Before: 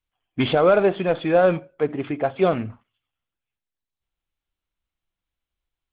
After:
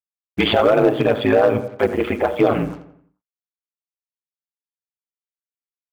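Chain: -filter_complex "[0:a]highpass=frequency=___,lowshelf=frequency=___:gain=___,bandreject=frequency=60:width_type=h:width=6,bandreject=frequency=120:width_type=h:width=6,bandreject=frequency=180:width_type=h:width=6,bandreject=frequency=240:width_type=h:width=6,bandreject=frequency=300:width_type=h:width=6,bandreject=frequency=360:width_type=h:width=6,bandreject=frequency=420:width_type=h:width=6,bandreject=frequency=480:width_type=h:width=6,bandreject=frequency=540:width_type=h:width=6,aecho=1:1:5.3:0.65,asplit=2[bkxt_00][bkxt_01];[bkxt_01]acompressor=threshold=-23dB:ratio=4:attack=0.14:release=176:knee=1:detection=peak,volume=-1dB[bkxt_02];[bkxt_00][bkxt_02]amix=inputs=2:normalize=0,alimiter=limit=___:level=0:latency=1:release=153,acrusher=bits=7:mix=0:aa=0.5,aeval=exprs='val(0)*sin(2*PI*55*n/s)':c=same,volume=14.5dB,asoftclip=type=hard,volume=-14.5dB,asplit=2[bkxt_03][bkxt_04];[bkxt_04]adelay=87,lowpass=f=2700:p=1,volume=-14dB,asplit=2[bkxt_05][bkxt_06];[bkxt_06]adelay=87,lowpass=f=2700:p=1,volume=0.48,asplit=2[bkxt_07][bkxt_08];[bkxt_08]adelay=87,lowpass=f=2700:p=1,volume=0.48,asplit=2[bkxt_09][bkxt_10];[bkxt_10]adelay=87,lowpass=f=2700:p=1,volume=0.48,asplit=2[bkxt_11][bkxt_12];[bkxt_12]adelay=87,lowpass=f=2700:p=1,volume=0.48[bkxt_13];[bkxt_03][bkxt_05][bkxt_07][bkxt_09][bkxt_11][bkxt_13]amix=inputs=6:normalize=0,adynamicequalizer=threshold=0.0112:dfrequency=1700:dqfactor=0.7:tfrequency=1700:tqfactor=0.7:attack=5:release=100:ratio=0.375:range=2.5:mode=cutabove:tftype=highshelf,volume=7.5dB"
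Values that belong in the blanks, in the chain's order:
140, 240, -4, -10.5dB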